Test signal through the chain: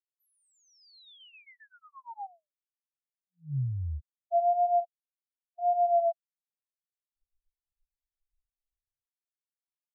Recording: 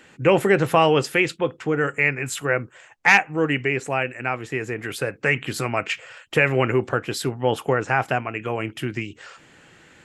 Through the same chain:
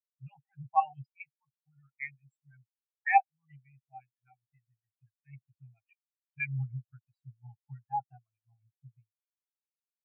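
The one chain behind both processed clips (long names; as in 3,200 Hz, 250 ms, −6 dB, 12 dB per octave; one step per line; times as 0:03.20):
elliptic band-stop filter 140–770 Hz, stop band 40 dB
parametric band 460 Hz +5 dB 0.78 octaves
pitch vibrato 0.92 Hz 50 cents
auto-filter notch saw up 7.5 Hz 800–2,100 Hz
every bin expanded away from the loudest bin 4 to 1
level −6.5 dB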